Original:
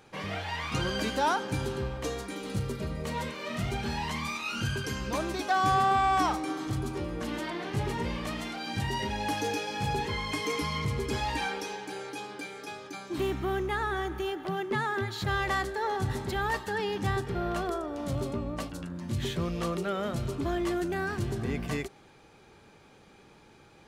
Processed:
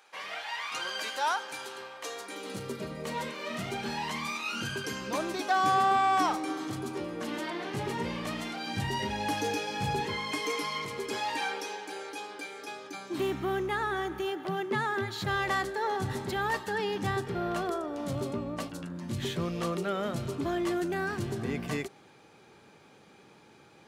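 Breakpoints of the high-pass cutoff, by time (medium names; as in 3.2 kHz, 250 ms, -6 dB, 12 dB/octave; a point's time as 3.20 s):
2.01 s 800 Hz
2.71 s 200 Hz
7.64 s 200 Hz
8.46 s 88 Hz
9.90 s 88 Hz
10.54 s 340 Hz
12.45 s 340 Hz
13.39 s 120 Hz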